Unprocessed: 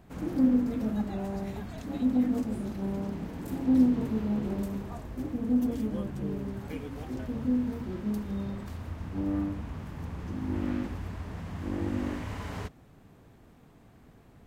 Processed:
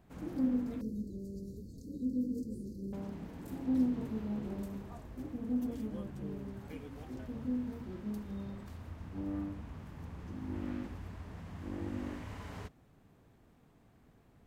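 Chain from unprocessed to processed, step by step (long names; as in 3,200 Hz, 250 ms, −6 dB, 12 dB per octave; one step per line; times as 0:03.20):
0:00.81–0:02.93: Chebyshev band-stop filter 510–4,400 Hz, order 5
level −8 dB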